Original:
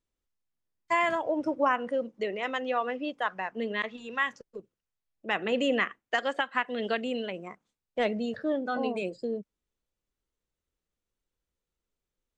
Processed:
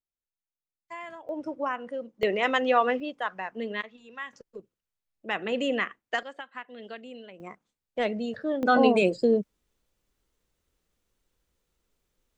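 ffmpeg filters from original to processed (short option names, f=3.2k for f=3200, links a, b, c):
-af "asetnsamples=n=441:p=0,asendcmd='1.29 volume volume -5dB;2.23 volume volume 7dB;3 volume volume -1dB;3.81 volume volume -9.5dB;4.33 volume volume -1dB;6.23 volume volume -11.5dB;7.4 volume volume 0dB;8.63 volume volume 10.5dB',volume=-14.5dB"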